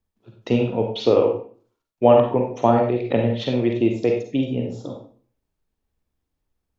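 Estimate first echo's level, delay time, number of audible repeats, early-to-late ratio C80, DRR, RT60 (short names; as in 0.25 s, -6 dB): none, none, none, 9.5 dB, 2.0 dB, 0.45 s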